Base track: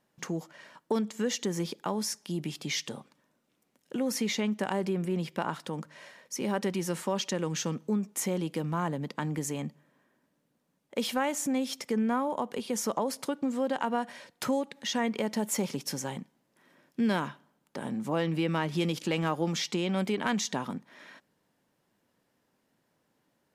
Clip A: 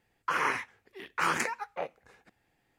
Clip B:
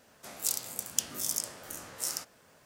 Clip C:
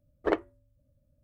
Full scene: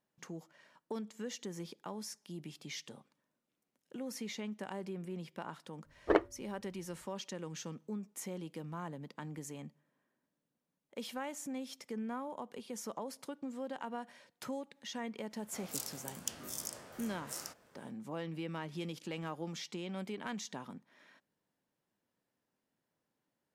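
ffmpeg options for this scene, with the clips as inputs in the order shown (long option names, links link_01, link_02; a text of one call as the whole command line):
ffmpeg -i bed.wav -i cue0.wav -i cue1.wav -i cue2.wav -filter_complex "[0:a]volume=-12dB[link_01];[2:a]highshelf=frequency=2500:gain=-7[link_02];[3:a]atrim=end=1.23,asetpts=PTS-STARTPTS,volume=-1dB,afade=type=in:duration=0.004:curve=hsin,afade=type=out:start_time=1.226:duration=0.004:curve=hsin,adelay=5830[link_03];[link_02]atrim=end=2.65,asetpts=PTS-STARTPTS,volume=-3.5dB,afade=type=in:duration=0.05,afade=type=out:start_time=2.6:duration=0.05,adelay=15290[link_04];[link_01][link_03][link_04]amix=inputs=3:normalize=0" out.wav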